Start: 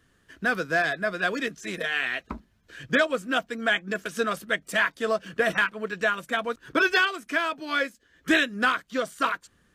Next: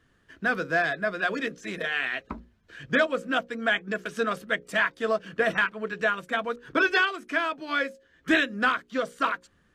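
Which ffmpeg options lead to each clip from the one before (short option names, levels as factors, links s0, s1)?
-af "lowpass=f=3600:p=1,bandreject=f=60:t=h:w=6,bandreject=f=120:t=h:w=6,bandreject=f=180:t=h:w=6,bandreject=f=240:t=h:w=6,bandreject=f=300:t=h:w=6,bandreject=f=360:t=h:w=6,bandreject=f=420:t=h:w=6,bandreject=f=480:t=h:w=6,bandreject=f=540:t=h:w=6"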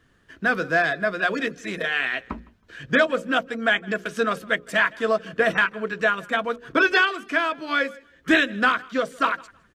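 -af "aecho=1:1:160|320:0.0631|0.0145,volume=1.58"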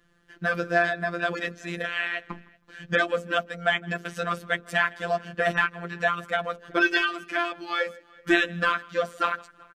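-filter_complex "[0:a]asplit=2[s0][s1];[s1]adelay=379,volume=0.0501,highshelf=f=4000:g=-8.53[s2];[s0][s2]amix=inputs=2:normalize=0,afftfilt=real='hypot(re,im)*cos(PI*b)':imag='0':win_size=1024:overlap=0.75"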